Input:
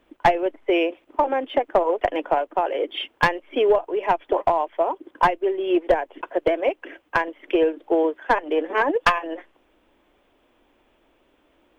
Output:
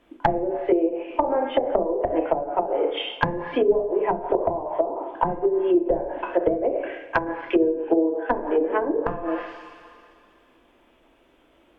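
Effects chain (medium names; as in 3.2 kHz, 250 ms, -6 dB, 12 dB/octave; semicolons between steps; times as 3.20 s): two-slope reverb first 0.66 s, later 2.4 s, from -18 dB, DRR -0.5 dB; low-pass that closes with the level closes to 380 Hz, closed at -14 dBFS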